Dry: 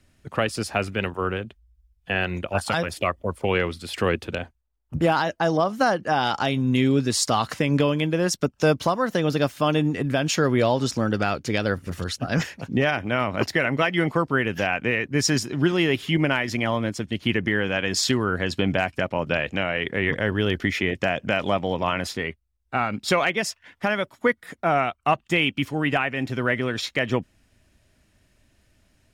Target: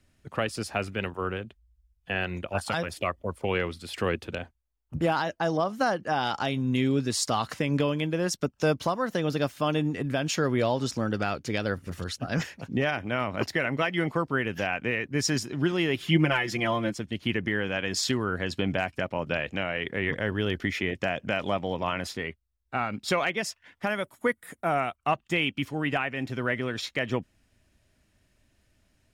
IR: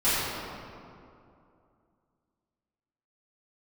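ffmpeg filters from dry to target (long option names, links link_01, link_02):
-filter_complex "[0:a]asettb=1/sr,asplit=3[link_01][link_02][link_03];[link_01]atrim=end=16.004[link_04];[link_02]atrim=start=16:end=16.94,asetpts=PTS-STARTPTS,afade=type=in:duration=0.004:curve=qsin,afade=type=out:start_time=0.936:duration=0.004:curve=qsin,aecho=1:1:5.8:0.95,atrim=end_sample=41454[link_05];[link_03]atrim=start=16.936[link_06];[link_04][link_05]acrossfade=duration=0.004:curve1=hsin:curve2=qsin[link_07];[link_07][link_06]acrossfade=duration=0.004:curve1=qsin:curve2=hsin,asettb=1/sr,asplit=3[link_08][link_09][link_10];[link_08]atrim=end=23.874[link_11];[link_09]atrim=start=23.87:end=24.96,asetpts=PTS-STARTPTS,afade=type=in:duration=0.004:curve=qsin,afade=type=out:start_time=1.086:duration=0.004:curve=qsin,highshelf=frequency=7000:width_type=q:width=1.5:gain=8.5[link_12];[link_10]atrim=start=24.956[link_13];[link_11][link_12]acrossfade=duration=0.004:curve1=hsin:curve2=qsin[link_14];[link_14][link_13]acrossfade=duration=0.004:curve1=qsin:curve2=hsin,volume=-5dB"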